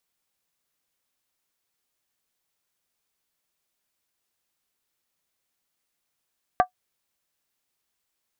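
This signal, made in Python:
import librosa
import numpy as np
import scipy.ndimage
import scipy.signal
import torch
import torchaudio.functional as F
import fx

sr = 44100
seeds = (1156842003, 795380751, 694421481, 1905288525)

y = fx.strike_skin(sr, length_s=0.63, level_db=-10, hz=734.0, decay_s=0.1, tilt_db=6.5, modes=5)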